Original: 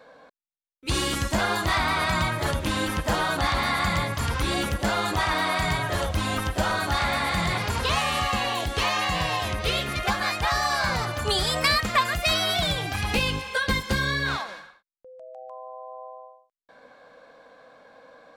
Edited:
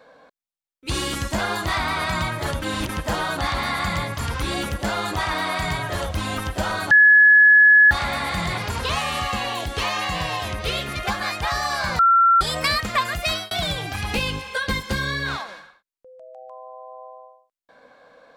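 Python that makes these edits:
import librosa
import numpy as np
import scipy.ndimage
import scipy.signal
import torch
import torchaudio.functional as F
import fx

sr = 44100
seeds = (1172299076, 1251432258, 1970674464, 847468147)

y = fx.edit(x, sr, fx.reverse_span(start_s=2.62, length_s=0.27),
    fx.insert_tone(at_s=6.91, length_s=1.0, hz=1700.0, db=-8.5),
    fx.bleep(start_s=10.99, length_s=0.42, hz=1360.0, db=-11.5),
    fx.fade_out_span(start_s=12.22, length_s=0.29, curve='qsin'), tone=tone)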